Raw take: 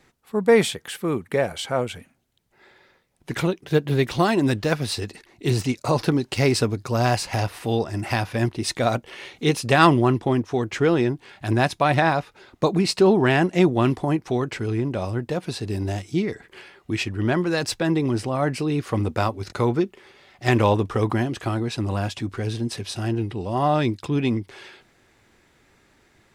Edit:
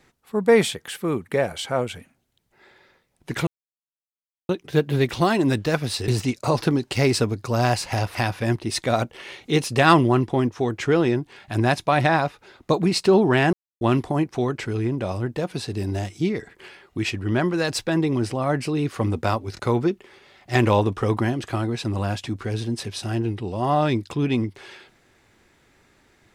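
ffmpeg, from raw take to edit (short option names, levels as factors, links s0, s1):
-filter_complex "[0:a]asplit=6[s0][s1][s2][s3][s4][s5];[s0]atrim=end=3.47,asetpts=PTS-STARTPTS,afade=t=out:st=3.466:d=0.004:c=hsin,apad=pad_dur=1.02[s6];[s1]atrim=start=3.47:end=5.062,asetpts=PTS-STARTPTS,afade=t=in:d=0.004:c=hsin[s7];[s2]atrim=start=5.488:end=7.562[s8];[s3]atrim=start=8.078:end=13.46,asetpts=PTS-STARTPTS,afade=t=out:st=5.378:d=0.004:c=hsin[s9];[s4]atrim=start=13.46:end=13.74,asetpts=PTS-STARTPTS,volume=0[s10];[s5]atrim=start=13.74,asetpts=PTS-STARTPTS,afade=t=in:d=0.004:c=hsin[s11];[s6][s7]concat=n=2:v=0:a=1[s12];[s12][s8]acrossfade=d=0.004:c1=hsin:c2=hsin[s13];[s9][s10][s11]concat=n=3:v=0:a=1[s14];[s13][s14]acrossfade=d=0.004:c1=hsin:c2=hsin"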